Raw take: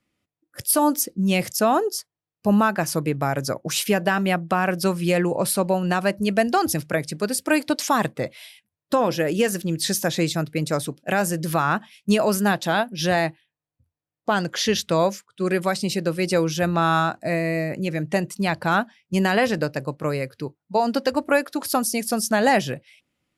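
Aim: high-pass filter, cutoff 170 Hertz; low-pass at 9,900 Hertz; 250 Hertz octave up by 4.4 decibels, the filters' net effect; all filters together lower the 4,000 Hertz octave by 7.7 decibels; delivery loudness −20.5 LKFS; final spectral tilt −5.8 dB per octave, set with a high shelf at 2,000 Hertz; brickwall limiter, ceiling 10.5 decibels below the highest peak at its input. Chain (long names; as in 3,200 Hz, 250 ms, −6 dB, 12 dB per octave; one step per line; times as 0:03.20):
high-pass filter 170 Hz
low-pass filter 9,900 Hz
parametric band 250 Hz +8 dB
high-shelf EQ 2,000 Hz −3.5 dB
parametric band 4,000 Hz −6.5 dB
level +5 dB
brickwall limiter −10 dBFS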